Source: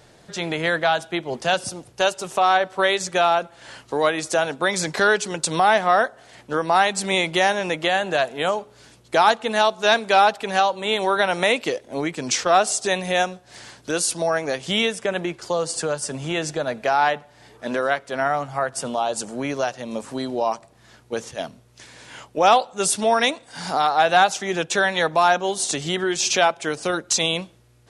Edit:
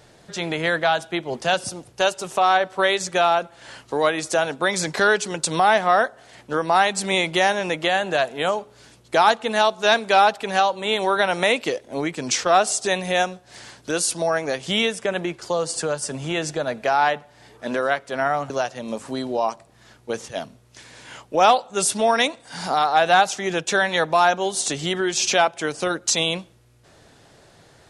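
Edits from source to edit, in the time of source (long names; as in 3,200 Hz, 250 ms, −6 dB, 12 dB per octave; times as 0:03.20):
0:18.50–0:19.53: remove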